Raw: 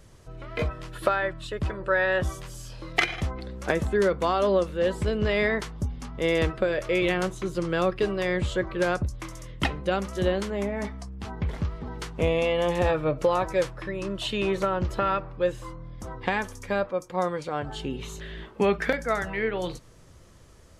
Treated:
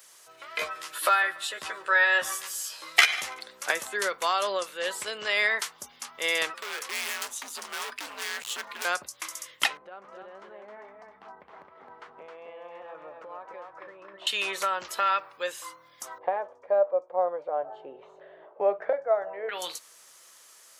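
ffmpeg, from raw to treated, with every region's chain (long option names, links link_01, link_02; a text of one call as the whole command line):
ffmpeg -i in.wav -filter_complex "[0:a]asettb=1/sr,asplit=3[link_01][link_02][link_03];[link_01]atrim=end=0.614[link_04];[link_02]atrim=start=0.61:end=3.39,asetpts=PTS-STARTPTS,afade=type=in:duration=0.004:curve=qsin,afade=type=out:start_time=2.776:duration=0.004:curve=qsin,asplit=2[link_05][link_06];[link_06]adelay=13,volume=-4dB[link_07];[link_05][link_07]amix=inputs=2:normalize=0,atrim=end_sample=122598,aecho=1:1:144|288|432:0.0891|0.0392|0.0173,atrim=end_sample=122598[link_08];[link_03]atrim=start=3.386[link_09];[link_04][link_08]acrossfade=duration=0.004:curve1=hsin:curve2=qsin[link_10];[link_10][link_09]acrossfade=duration=0.004:curve1=qsin:curve2=hsin,asettb=1/sr,asplit=3[link_11][link_12][link_13];[link_11]atrim=end=6.544[link_14];[link_12]atrim=start=6.54:end=8.85,asetpts=PTS-STARTPTS,afade=type=in:duration=0.004:curve=qsin,afade=type=out:start_time=2.306:duration=0.004:curve=qsin,afreqshift=-120,volume=30.5dB,asoftclip=hard,volume=-30.5dB[link_15];[link_13]atrim=start=8.846[link_16];[link_14][link_15]acrossfade=duration=0.004:curve1=hsin:curve2=qsin[link_17];[link_17][link_16]acrossfade=duration=0.004:curve1=qsin:curve2=hsin,asettb=1/sr,asplit=3[link_18][link_19][link_20];[link_18]atrim=end=9.774[link_21];[link_19]atrim=start=9.77:end=14.27,asetpts=PTS-STARTPTS,afade=type=in:duration=0.004:curve=qsin,afade=type=out:start_time=4.496:duration=0.004:curve=qsin,lowpass=1000,acompressor=threshold=-33dB:ratio=8:attack=3.2:release=140:knee=1:detection=peak,aecho=1:1:265:0.631,atrim=end_sample=198450[link_22];[link_20]atrim=start=14.266[link_23];[link_21][link_22]acrossfade=duration=0.004:curve1=hsin:curve2=qsin[link_24];[link_24][link_23]acrossfade=duration=0.004:curve1=qsin:curve2=hsin,asettb=1/sr,asplit=3[link_25][link_26][link_27];[link_25]atrim=end=16.184[link_28];[link_26]atrim=start=16.18:end=19.49,asetpts=PTS-STARTPTS,afade=type=in:duration=0.004:curve=qsin,afade=type=out:start_time=3.306:duration=0.004:curve=qsin,lowpass=frequency=620:width_type=q:width=4.4,equalizer=frequency=230:width_type=o:width=0.26:gain=-11.5[link_29];[link_27]atrim=start=19.486[link_30];[link_28][link_29]acrossfade=duration=0.004:curve1=hsin:curve2=qsin[link_31];[link_31][link_30]acrossfade=duration=0.004:curve1=qsin:curve2=hsin,highpass=980,aemphasis=mode=production:type=50kf,volume=2.5dB" out.wav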